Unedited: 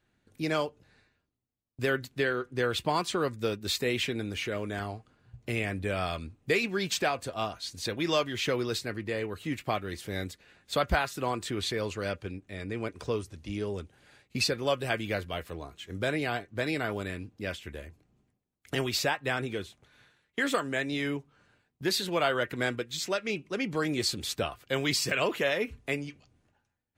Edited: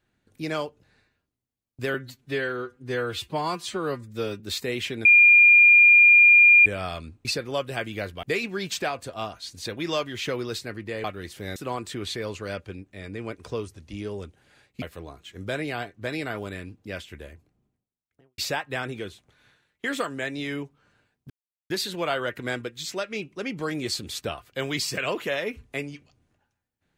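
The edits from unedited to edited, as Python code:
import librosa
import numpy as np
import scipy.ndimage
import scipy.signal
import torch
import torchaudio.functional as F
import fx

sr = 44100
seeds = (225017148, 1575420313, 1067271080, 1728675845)

y = fx.studio_fade_out(x, sr, start_s=17.72, length_s=1.2)
y = fx.edit(y, sr, fx.stretch_span(start_s=1.94, length_s=1.64, factor=1.5),
    fx.bleep(start_s=4.23, length_s=1.61, hz=2410.0, db=-10.5),
    fx.cut(start_s=9.24, length_s=0.48),
    fx.cut(start_s=10.24, length_s=0.88),
    fx.move(start_s=14.38, length_s=0.98, to_s=6.43),
    fx.insert_silence(at_s=21.84, length_s=0.4), tone=tone)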